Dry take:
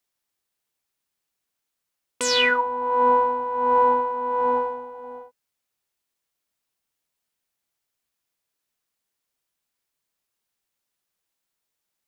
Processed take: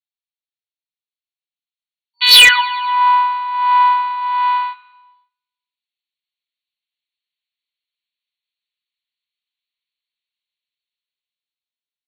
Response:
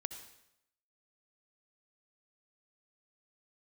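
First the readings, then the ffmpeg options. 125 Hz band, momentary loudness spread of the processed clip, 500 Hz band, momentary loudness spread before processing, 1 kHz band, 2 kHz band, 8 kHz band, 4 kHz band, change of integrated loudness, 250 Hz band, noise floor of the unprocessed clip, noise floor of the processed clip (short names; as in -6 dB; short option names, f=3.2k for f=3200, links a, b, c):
n/a, 14 LU, under -15 dB, 16 LU, +7.0 dB, +12.0 dB, +9.0 dB, +17.0 dB, +10.0 dB, under -15 dB, -82 dBFS, under -85 dBFS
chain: -af "agate=range=-27dB:threshold=-28dB:ratio=16:detection=peak,aecho=1:1:102|204|306|408|510:0.119|0.0654|0.036|0.0198|0.0109,dynaudnorm=f=300:g=13:m=13dB,afftfilt=real='re*between(b*sr/4096,950,4500)':imag='im*between(b*sr/4096,950,4500)':win_size=4096:overlap=0.75,aexciter=amount=8.9:drive=0.9:freq=2.1k,volume=2.5dB,asoftclip=hard,volume=-2.5dB,adynamicequalizer=threshold=0.112:dfrequency=2100:dqfactor=0.7:tfrequency=2100:tqfactor=0.7:attack=5:release=100:ratio=0.375:range=2.5:mode=cutabove:tftype=highshelf,volume=1dB"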